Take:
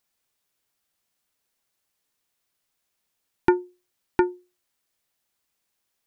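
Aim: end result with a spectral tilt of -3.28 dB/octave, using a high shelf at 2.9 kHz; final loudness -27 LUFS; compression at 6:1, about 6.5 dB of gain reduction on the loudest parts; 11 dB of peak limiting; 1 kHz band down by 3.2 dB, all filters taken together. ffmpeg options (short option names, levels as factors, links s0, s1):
-af "equalizer=f=1000:t=o:g=-3,highshelf=f=2900:g=-6.5,acompressor=threshold=0.0794:ratio=6,volume=3.76,alimiter=limit=0.398:level=0:latency=1"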